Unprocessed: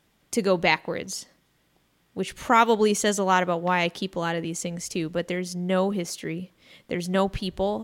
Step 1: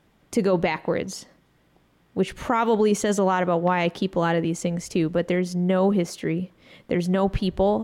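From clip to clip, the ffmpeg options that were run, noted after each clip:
ffmpeg -i in.wav -af "alimiter=limit=-17dB:level=0:latency=1:release=22,highshelf=frequency=2500:gain=-11,volume=6.5dB" out.wav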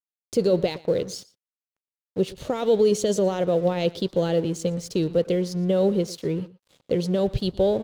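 ffmpeg -i in.wav -filter_complex "[0:a]equalizer=frequency=125:width_type=o:width=1:gain=5,equalizer=frequency=250:width_type=o:width=1:gain=-4,equalizer=frequency=500:width_type=o:width=1:gain=9,equalizer=frequency=1000:width_type=o:width=1:gain=-12,equalizer=frequency=2000:width_type=o:width=1:gain=-10,equalizer=frequency=4000:width_type=o:width=1:gain=10,aeval=exprs='sgn(val(0))*max(abs(val(0))-0.00631,0)':channel_layout=same,asplit=2[link_01][link_02];[link_02]adelay=116.6,volume=-20dB,highshelf=frequency=4000:gain=-2.62[link_03];[link_01][link_03]amix=inputs=2:normalize=0,volume=-2dB" out.wav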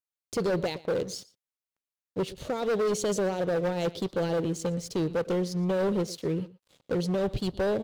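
ffmpeg -i in.wav -af "asoftclip=type=hard:threshold=-21dB,volume=-2.5dB" out.wav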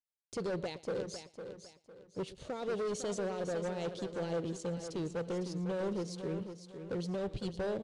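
ffmpeg -i in.wav -af "aecho=1:1:504|1008|1512|2016:0.355|0.114|0.0363|0.0116,aresample=22050,aresample=44100,volume=-9dB" out.wav

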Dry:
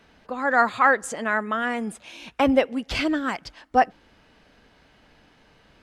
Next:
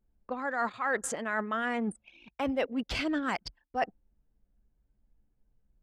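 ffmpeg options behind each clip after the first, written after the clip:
ffmpeg -i in.wav -af "anlmdn=2.51,areverse,acompressor=threshold=-28dB:ratio=6,areverse" out.wav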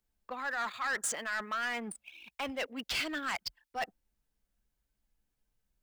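ffmpeg -i in.wav -filter_complex "[0:a]tiltshelf=frequency=860:gain=-9,acrossover=split=120|930|2500[link_01][link_02][link_03][link_04];[link_04]acrusher=bits=3:mode=log:mix=0:aa=0.000001[link_05];[link_01][link_02][link_03][link_05]amix=inputs=4:normalize=0,asoftclip=type=tanh:threshold=-26dB,volume=-2dB" out.wav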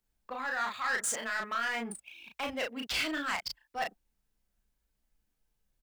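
ffmpeg -i in.wav -filter_complex "[0:a]asplit=2[link_01][link_02];[link_02]adelay=35,volume=-3dB[link_03];[link_01][link_03]amix=inputs=2:normalize=0" out.wav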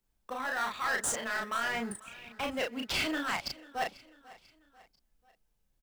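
ffmpeg -i in.wav -filter_complex "[0:a]asplit=2[link_01][link_02];[link_02]acrusher=samples=19:mix=1:aa=0.000001,volume=-11dB[link_03];[link_01][link_03]amix=inputs=2:normalize=0,aecho=1:1:492|984|1476:0.0944|0.0444|0.0209" out.wav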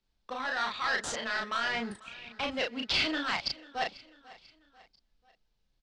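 ffmpeg -i in.wav -af "lowpass=frequency=4400:width_type=q:width=2.2" out.wav

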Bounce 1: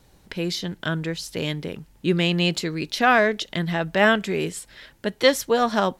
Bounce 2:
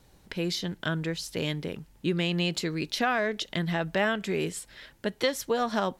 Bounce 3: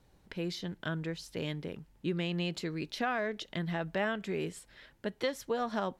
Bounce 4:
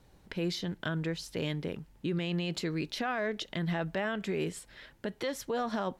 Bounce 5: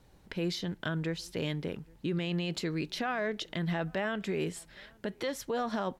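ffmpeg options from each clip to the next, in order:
ffmpeg -i in.wav -af "acompressor=threshold=-20dB:ratio=4,volume=-3dB" out.wav
ffmpeg -i in.wav -af "highshelf=frequency=3600:gain=-7,volume=-5.5dB" out.wav
ffmpeg -i in.wav -af "alimiter=level_in=3.5dB:limit=-24dB:level=0:latency=1:release=31,volume=-3.5dB,volume=4dB" out.wav
ffmpeg -i in.wav -filter_complex "[0:a]asplit=2[link_01][link_02];[link_02]adelay=816.3,volume=-28dB,highshelf=frequency=4000:gain=-18.4[link_03];[link_01][link_03]amix=inputs=2:normalize=0" out.wav

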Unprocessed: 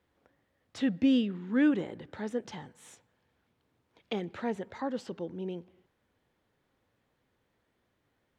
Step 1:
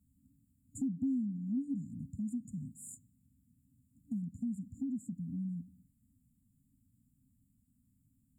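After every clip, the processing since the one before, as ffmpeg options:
ffmpeg -i in.wav -filter_complex "[0:a]afftfilt=real='re*(1-between(b*sr/4096,290,6900))':imag='im*(1-between(b*sr/4096,290,6900))':win_size=4096:overlap=0.75,asplit=2[link_01][link_02];[link_02]alimiter=level_in=4dB:limit=-24dB:level=0:latency=1:release=29,volume=-4dB,volume=2dB[link_03];[link_01][link_03]amix=inputs=2:normalize=0,acompressor=threshold=-39dB:ratio=2.5,volume=1dB" out.wav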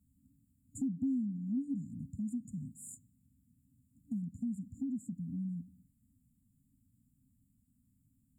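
ffmpeg -i in.wav -af anull out.wav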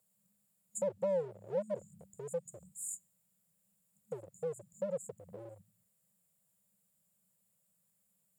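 ffmpeg -i in.wav -filter_complex "[0:a]afreqshift=-74,asplit=2[link_01][link_02];[link_02]aeval=exprs='0.0158*(abs(mod(val(0)/0.0158+3,4)-2)-1)':channel_layout=same,volume=-4dB[link_03];[link_01][link_03]amix=inputs=2:normalize=0,highpass=frequency=530:width_type=q:width=4.9,volume=3.5dB" out.wav

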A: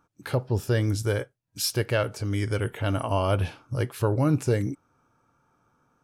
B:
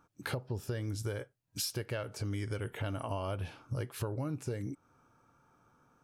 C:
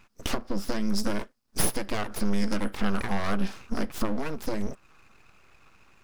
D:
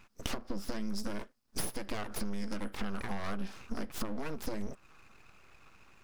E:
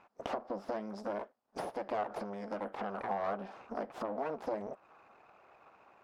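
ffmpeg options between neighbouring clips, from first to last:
ffmpeg -i in.wav -af "acompressor=threshold=-33dB:ratio=10" out.wav
ffmpeg -i in.wav -af "equalizer=frequency=100:width_type=o:width=0.33:gain=10,equalizer=frequency=250:width_type=o:width=0.33:gain=-9,equalizer=frequency=400:width_type=o:width=0.33:gain=4,equalizer=frequency=1250:width_type=o:width=0.33:gain=10,equalizer=frequency=5000:width_type=o:width=0.33:gain=12,aeval=exprs='abs(val(0))':channel_layout=same,volume=7dB" out.wav
ffmpeg -i in.wav -af "acompressor=threshold=-29dB:ratio=6,volume=-1.5dB" out.wav
ffmpeg -i in.wav -af "bandpass=frequency=700:width_type=q:width=2.1:csg=0,volume=10dB" out.wav

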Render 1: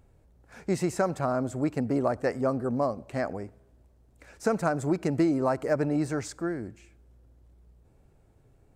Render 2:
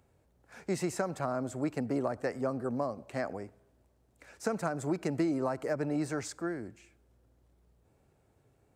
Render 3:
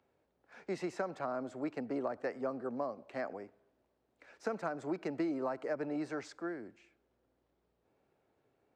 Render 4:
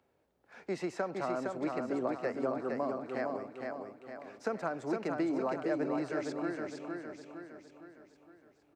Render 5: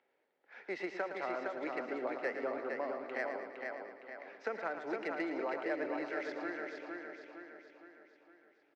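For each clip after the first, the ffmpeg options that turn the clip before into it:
ffmpeg -i in.wav -filter_complex "[0:a]highpass=66,lowshelf=frequency=350:gain=-5.5,acrossover=split=280[link_01][link_02];[link_02]acompressor=threshold=-28dB:ratio=6[link_03];[link_01][link_03]amix=inputs=2:normalize=0,volume=-1.5dB" out.wav
ffmpeg -i in.wav -filter_complex "[0:a]acrossover=split=210 5100:gain=0.178 1 0.1[link_01][link_02][link_03];[link_01][link_02][link_03]amix=inputs=3:normalize=0,volume=-3.5dB" out.wav
ffmpeg -i in.wav -af "aecho=1:1:461|922|1383|1844|2305|2766:0.631|0.309|0.151|0.0742|0.0364|0.0178,volume=2dB" out.wav
ffmpeg -i in.wav -af "highpass=450,equalizer=frequency=660:width_type=q:width=4:gain=-4,equalizer=frequency=1100:width_type=q:width=4:gain=-6,equalizer=frequency=2000:width_type=q:width=4:gain=8,equalizer=frequency=3200:width_type=q:width=4:gain=3,lowpass=frequency=6000:width=0.5412,lowpass=frequency=6000:width=1.3066,adynamicsmooth=sensitivity=5:basefreq=4500,aecho=1:1:113|226|339|452|565|678:0.335|0.184|0.101|0.0557|0.0307|0.0169" out.wav

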